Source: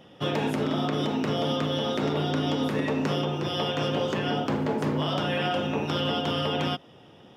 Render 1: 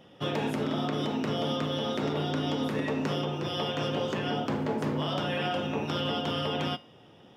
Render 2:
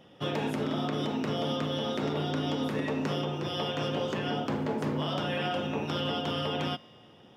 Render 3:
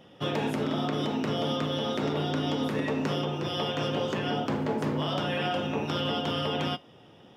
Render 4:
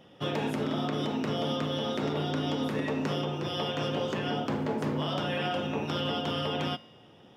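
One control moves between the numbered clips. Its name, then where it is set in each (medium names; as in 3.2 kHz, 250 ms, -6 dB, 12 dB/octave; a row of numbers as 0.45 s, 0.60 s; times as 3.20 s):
feedback comb, decay: 0.43 s, 2.1 s, 0.2 s, 0.98 s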